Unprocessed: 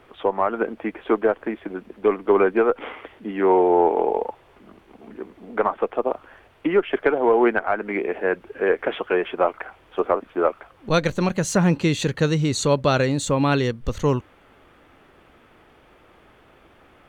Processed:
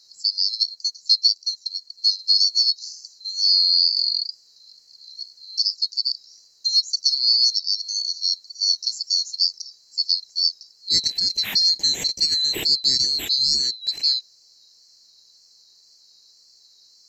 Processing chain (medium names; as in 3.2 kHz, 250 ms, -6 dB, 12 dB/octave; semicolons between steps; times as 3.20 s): split-band scrambler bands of 4 kHz; wow and flutter 39 cents; 0.57–2.02 s: transient shaper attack +4 dB, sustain -4 dB; trim -1 dB